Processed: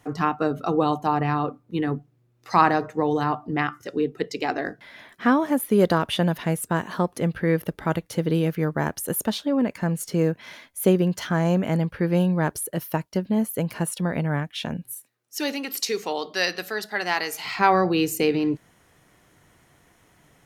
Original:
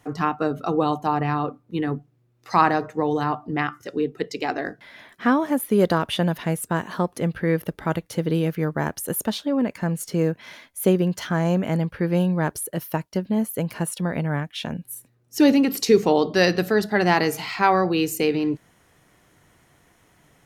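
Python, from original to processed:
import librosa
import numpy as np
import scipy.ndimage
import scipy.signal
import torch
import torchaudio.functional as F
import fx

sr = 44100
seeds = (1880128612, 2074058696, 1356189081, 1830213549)

y = fx.highpass(x, sr, hz=1500.0, slope=6, at=(14.92, 17.44), fade=0.02)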